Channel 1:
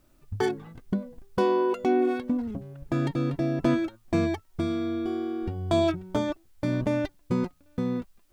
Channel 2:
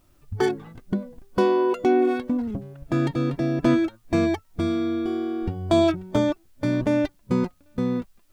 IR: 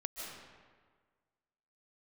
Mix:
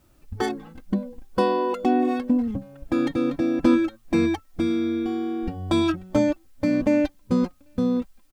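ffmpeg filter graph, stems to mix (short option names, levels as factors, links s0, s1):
-filter_complex "[0:a]volume=1.12[s0];[1:a]adelay=3.8,volume=0.75[s1];[s0][s1]amix=inputs=2:normalize=0"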